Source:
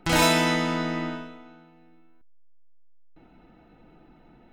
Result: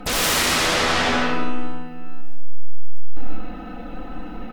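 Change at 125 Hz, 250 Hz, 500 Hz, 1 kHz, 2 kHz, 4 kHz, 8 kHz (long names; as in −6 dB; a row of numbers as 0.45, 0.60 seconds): +1.0, +0.5, +2.5, +4.5, +6.0, +7.5, +9.0 decibels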